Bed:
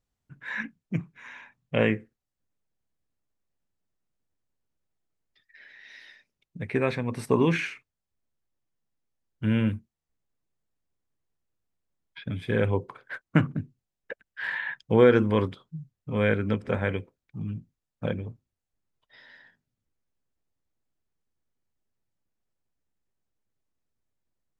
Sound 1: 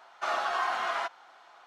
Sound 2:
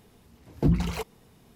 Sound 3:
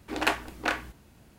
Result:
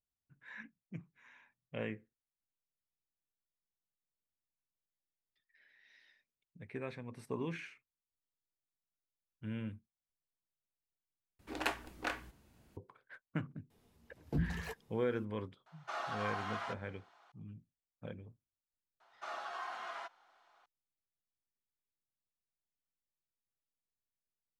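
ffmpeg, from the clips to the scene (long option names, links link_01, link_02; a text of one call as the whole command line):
ffmpeg -i bed.wav -i cue0.wav -i cue1.wav -i cue2.wav -filter_complex "[1:a]asplit=2[link_01][link_02];[0:a]volume=-17dB[link_03];[2:a]asplit=2[link_04][link_05];[link_05]adelay=13,volume=-10.5dB[link_06];[link_04][link_06]amix=inputs=2:normalize=0[link_07];[link_03]asplit=2[link_08][link_09];[link_08]atrim=end=11.394[link_10];[3:a]atrim=end=1.38,asetpts=PTS-STARTPTS,volume=-10dB[link_11];[link_09]atrim=start=12.766[link_12];[link_07]atrim=end=1.55,asetpts=PTS-STARTPTS,volume=-13dB,afade=type=in:duration=0.004:curve=hsin,afade=type=out:start_time=1.546:duration=0.004:curve=hsin,adelay=13700[link_13];[link_01]atrim=end=1.66,asetpts=PTS-STARTPTS,volume=-10.5dB,afade=type=in:duration=0.004:curve=hsin,afade=type=out:start_time=1.656:duration=0.004:curve=hsin,adelay=15660[link_14];[link_02]atrim=end=1.66,asetpts=PTS-STARTPTS,volume=-13.5dB,afade=type=in:duration=0.004:curve=hsin,afade=type=out:start_time=1.656:duration=0.004:curve=hsin,adelay=19000[link_15];[link_10][link_11]acrossfade=duration=0.004:curve1=hsin:curve2=hsin[link_16];[link_16][link_12]acrossfade=duration=0.004:curve1=hsin:curve2=hsin[link_17];[link_17][link_13][link_14][link_15]amix=inputs=4:normalize=0" out.wav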